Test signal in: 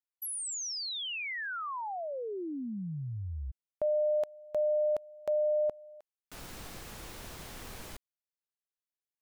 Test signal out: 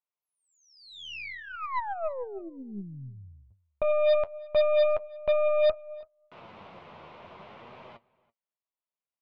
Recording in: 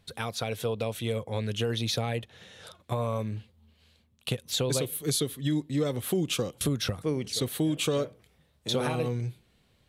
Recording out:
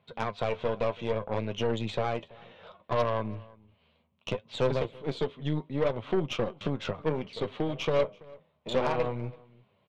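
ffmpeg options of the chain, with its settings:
-filter_complex "[0:a]flanger=delay=7.5:depth=5.4:regen=50:speed=0.64:shape=triangular,highpass=f=110:w=0.5412,highpass=f=110:w=1.3066,equalizer=f=120:t=q:w=4:g=-7,equalizer=f=290:t=q:w=4:g=-8,equalizer=f=620:t=q:w=4:g=6,equalizer=f=1000:t=q:w=4:g=7,equalizer=f=1700:t=q:w=4:g=-8,lowpass=f=2900:w=0.5412,lowpass=f=2900:w=1.3066,aeval=exprs='0.119*(cos(1*acos(clip(val(0)/0.119,-1,1)))-cos(1*PI/2))+0.00531*(cos(5*acos(clip(val(0)/0.119,-1,1)))-cos(5*PI/2))+0.00335*(cos(7*acos(clip(val(0)/0.119,-1,1)))-cos(7*PI/2))+0.0119*(cos(8*acos(clip(val(0)/0.119,-1,1)))-cos(8*PI/2))':c=same,asplit=2[s0][s1];[s1]adelay=332.4,volume=0.0708,highshelf=f=4000:g=-7.48[s2];[s0][s2]amix=inputs=2:normalize=0,volume=1.5"

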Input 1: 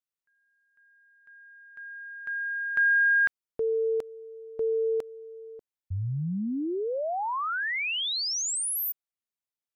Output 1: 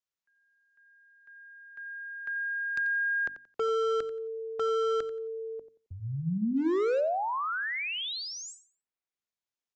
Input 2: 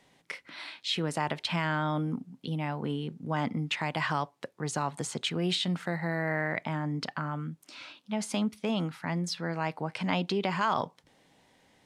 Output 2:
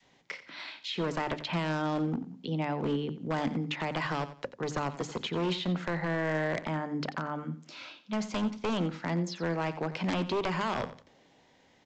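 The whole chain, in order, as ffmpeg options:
-filter_complex "[0:a]acrossover=split=130|590|1200|3300[s0][s1][s2][s3][s4];[s0]acompressor=threshold=0.00447:ratio=4[s5];[s1]acompressor=threshold=0.0398:ratio=4[s6];[s2]acompressor=threshold=0.00891:ratio=4[s7];[s3]acompressor=threshold=0.0141:ratio=4[s8];[s4]acompressor=threshold=0.00562:ratio=4[s9];[s5][s6][s7][s8][s9]amix=inputs=5:normalize=0,adynamicequalizer=threshold=0.00562:dfrequency=440:dqfactor=0.73:tfrequency=440:tqfactor=0.73:attack=5:release=100:ratio=0.375:range=3:mode=boostabove:tftype=bell,aresample=16000,aeval=exprs='0.0668*(abs(mod(val(0)/0.0668+3,4)-2)-1)':c=same,aresample=44100,bandreject=f=50:t=h:w=6,bandreject=f=100:t=h:w=6,bandreject=f=150:t=h:w=6,bandreject=f=200:t=h:w=6,bandreject=f=250:t=h:w=6,bandreject=f=300:t=h:w=6,aecho=1:1:89|178|267:0.2|0.0479|0.0115"

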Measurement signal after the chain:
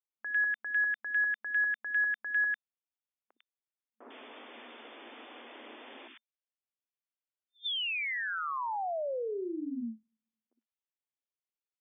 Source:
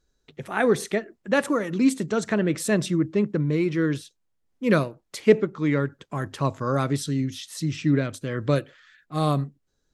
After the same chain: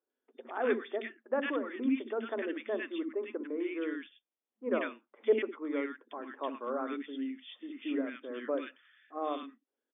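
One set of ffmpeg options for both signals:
-filter_complex "[0:a]acrossover=split=300|1400[s0][s1][s2];[s0]adelay=60[s3];[s2]adelay=100[s4];[s3][s1][s4]amix=inputs=3:normalize=0,afftfilt=real='re*between(b*sr/4096,220,3600)':imag='im*between(b*sr/4096,220,3600)':win_size=4096:overlap=0.75,volume=0.422"

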